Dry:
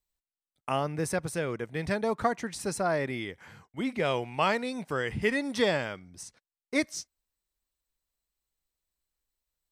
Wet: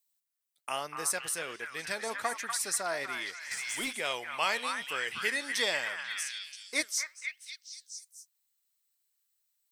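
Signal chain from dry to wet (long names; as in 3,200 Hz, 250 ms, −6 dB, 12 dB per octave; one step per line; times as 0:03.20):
spectral tilt +4 dB per octave
on a send: echo through a band-pass that steps 244 ms, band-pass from 1,400 Hz, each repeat 0.7 octaves, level −2 dB
on the sum: flanger 1.2 Hz, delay 0.5 ms, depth 8.8 ms, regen +83%
low-shelf EQ 200 Hz −8.5 dB
0:03.51–0:03.93: leveller curve on the samples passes 2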